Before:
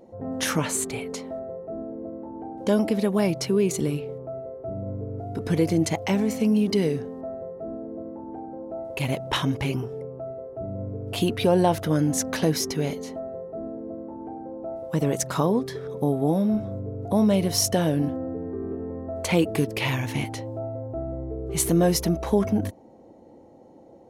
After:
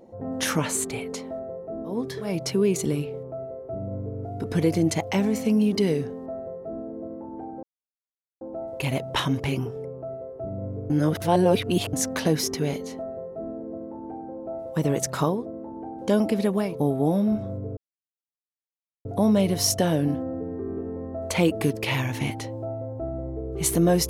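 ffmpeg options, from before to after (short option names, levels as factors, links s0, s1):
-filter_complex "[0:a]asplit=9[s0][s1][s2][s3][s4][s5][s6][s7][s8];[s0]atrim=end=2.08[s9];[s1]atrim=start=15.42:end=16[s10];[s2]atrim=start=3.13:end=8.58,asetpts=PTS-STARTPTS,afade=t=out:st=5.446:d=0.004:c=hsin,apad=pad_dur=0.78[s11];[s3]atrim=start=8.58:end=11.072,asetpts=PTS-STARTPTS,afade=t=in:d=0.004:c=hsin[s12];[s4]atrim=start=11.068:end=12.102,asetpts=PTS-STARTPTS,areverse[s13];[s5]atrim=start=12.098:end=15.66[s14];[s6]atrim=start=1.84:end=3.37[s15];[s7]atrim=start=15.76:end=16.99,asetpts=PTS-STARTPTS,afade=t=out:st=1.226:d=0.004:c=hsin,apad=pad_dur=1.28[s16];[s8]atrim=start=16.99,asetpts=PTS-STARTPTS,afade=t=in:d=0.004:c=hsin[s17];[s9][s10]acrossfade=d=0.24:c1=tri:c2=tri[s18];[s11][s12]concat=n=2:v=0:a=1[s19];[s18][s19]acrossfade=d=0.24:c1=tri:c2=tri[s20];[s20][s13]acrossfade=d=0.004:c1=hsin:c2=hsin[s21];[s21][s14]acrossfade=d=0.004:c1=hsin:c2=hsin[s22];[s22][s15]acrossfade=d=0.24:c1=tri:c2=tri[s23];[s16][s17]concat=n=2:v=0:a=1[s24];[s23][s24]acrossfade=d=0.24:c1=tri:c2=tri"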